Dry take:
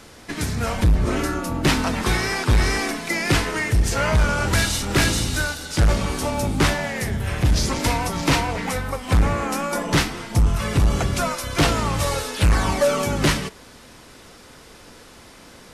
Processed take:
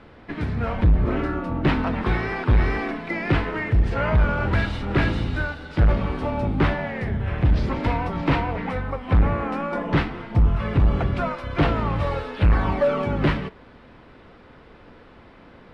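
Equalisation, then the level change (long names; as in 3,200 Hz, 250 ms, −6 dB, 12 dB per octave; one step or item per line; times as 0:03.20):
low-pass filter 9,300 Hz 12 dB per octave
high-frequency loss of the air 460 metres
0.0 dB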